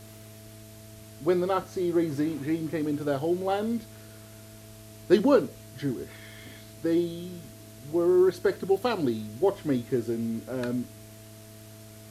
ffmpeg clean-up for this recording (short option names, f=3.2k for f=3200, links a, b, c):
-af "adeclick=t=4,bandreject=f=107.3:t=h:w=4,bandreject=f=214.6:t=h:w=4,bandreject=f=321.9:t=h:w=4,bandreject=f=429.2:t=h:w=4,bandreject=f=660:w=30,afwtdn=0.0025"